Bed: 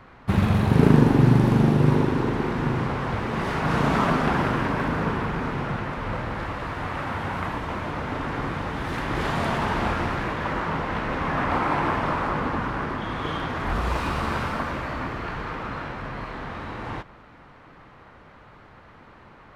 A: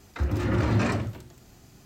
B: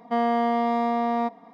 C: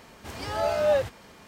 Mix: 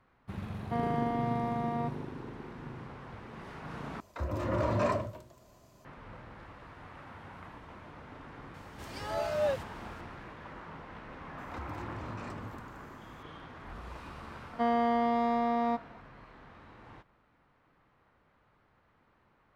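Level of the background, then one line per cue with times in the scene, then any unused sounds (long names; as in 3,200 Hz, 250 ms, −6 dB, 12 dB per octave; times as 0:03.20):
bed −19.5 dB
0:00.60: mix in B −10 dB + low-pass filter 3,700 Hz
0:04.00: overwrite with A −9.5 dB + hollow resonant body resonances 610/1,000 Hz, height 17 dB, ringing for 30 ms
0:08.54: mix in C −7.5 dB
0:11.38: mix in A −10.5 dB + downward compressor, threshold −29 dBFS
0:14.48: mix in B −5 dB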